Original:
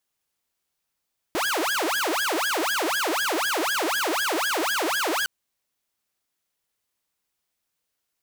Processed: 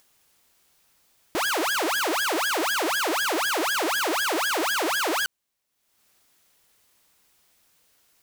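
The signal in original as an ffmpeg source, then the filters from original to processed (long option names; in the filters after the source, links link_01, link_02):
-f lavfi -i "aevalsrc='0.1*(2*mod((988.5*t-681.5/(2*PI*4)*sin(2*PI*4*t)),1)-1)':duration=3.91:sample_rate=44100"
-af "acompressor=mode=upward:threshold=-49dB:ratio=2.5"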